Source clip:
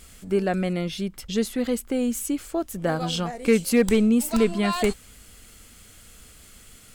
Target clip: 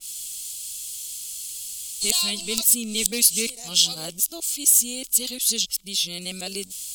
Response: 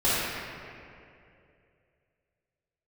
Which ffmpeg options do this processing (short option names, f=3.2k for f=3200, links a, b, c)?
-af "areverse,aexciter=amount=13.8:drive=9.1:freq=2.8k,adynamicequalizer=threshold=0.1:dfrequency=2300:dqfactor=0.7:tfrequency=2300:tqfactor=0.7:attack=5:release=100:ratio=0.375:range=2:mode=cutabove:tftype=highshelf,volume=-13dB"